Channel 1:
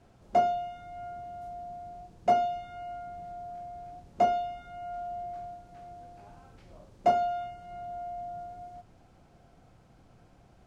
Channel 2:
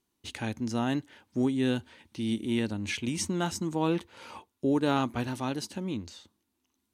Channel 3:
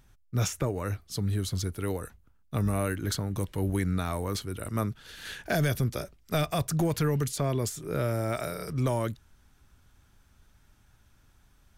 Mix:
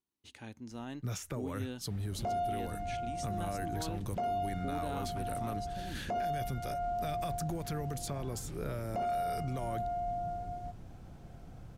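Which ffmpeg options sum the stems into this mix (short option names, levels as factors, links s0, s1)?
-filter_complex "[0:a]lowshelf=f=270:g=11,adelay=1900,volume=1.12[s0];[1:a]volume=0.2[s1];[2:a]acompressor=threshold=0.0316:ratio=6,adelay=700,volume=0.631[s2];[s0][s1][s2]amix=inputs=3:normalize=0,alimiter=level_in=1.5:limit=0.0631:level=0:latency=1:release=12,volume=0.668"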